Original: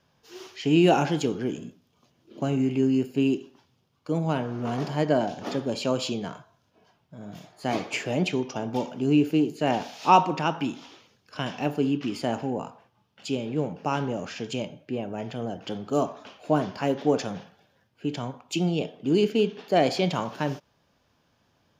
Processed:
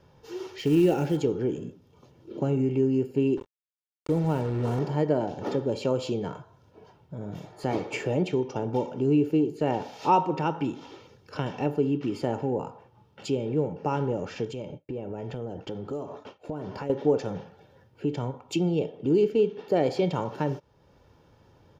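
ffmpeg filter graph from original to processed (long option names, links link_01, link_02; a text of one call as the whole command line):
ffmpeg -i in.wav -filter_complex "[0:a]asettb=1/sr,asplit=3[link_01][link_02][link_03];[link_01]atrim=end=0.584[link_04];[link_02]atrim=start=0.58:end=1.17,asetpts=PTS-STARTPTS,afade=type=in:duration=0.004:curve=qsin,afade=type=out:start_time=0.586:duration=0.004:curve=qsin,equalizer=frequency=990:width_type=o:width=0.76:gain=-10.5,acrusher=bits=4:mode=log:mix=0:aa=0.000001[link_05];[link_03]atrim=start=1.166[link_06];[link_04][link_05]acrossfade=duration=0.004:curve1=hsin:curve2=qsin[link_07];[link_07][link_06]acrossfade=duration=0.004:curve1=qsin:curve2=hsin,asettb=1/sr,asplit=3[link_08][link_09][link_10];[link_08]atrim=end=3.374[link_11];[link_09]atrim=start=3.37:end=4.79,asetpts=PTS-STARTPTS,afade=type=in:duration=0.004:curve=qsin,afade=type=out:start_time=1.416:duration=0.004:curve=qsin,lowshelf=frequency=67:gain=11.5,acrusher=bits=5:mix=0:aa=0.5[link_12];[link_10]atrim=start=4.786[link_13];[link_11][link_12]acrossfade=duration=0.004:curve1=hsin:curve2=qsin[link_14];[link_14][link_13]acrossfade=duration=0.004:curve1=qsin:curve2=hsin,asettb=1/sr,asplit=3[link_15][link_16][link_17];[link_15]atrim=end=14.454[link_18];[link_16]atrim=start=14.45:end=16.9,asetpts=PTS-STARTPTS,afade=type=in:duration=0.004:curve=qsin,afade=type=out:start_time=2.446:duration=0.004:curve=qsin,agate=range=-33dB:threshold=-41dB:ratio=3:release=100:detection=peak,acompressor=threshold=-36dB:ratio=4:attack=3.2:release=140:knee=1:detection=peak[link_19];[link_17]atrim=start=16.896[link_20];[link_18][link_19]acrossfade=duration=0.004:curve1=hsin:curve2=qsin[link_21];[link_21][link_20]acrossfade=duration=0.004:curve1=qsin:curve2=hsin,tiltshelf=frequency=1100:gain=6.5,aecho=1:1:2.2:0.46,acompressor=threshold=-46dB:ratio=1.5,volume=5.5dB" out.wav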